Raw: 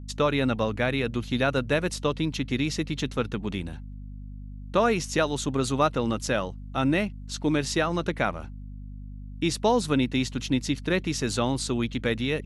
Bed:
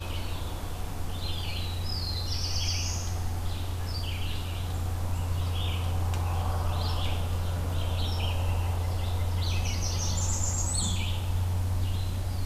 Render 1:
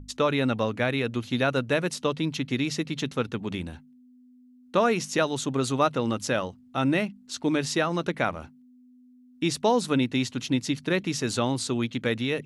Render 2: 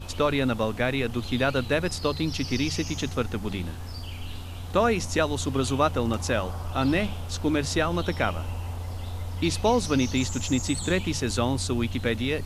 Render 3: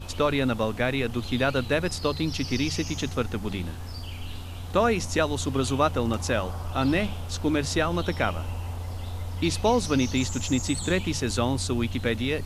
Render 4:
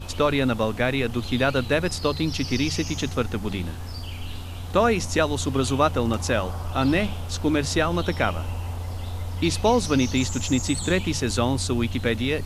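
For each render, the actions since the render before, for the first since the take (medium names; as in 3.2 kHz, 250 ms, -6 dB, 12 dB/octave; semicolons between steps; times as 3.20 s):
hum notches 50/100/150/200 Hz
add bed -4.5 dB
no audible change
trim +2.5 dB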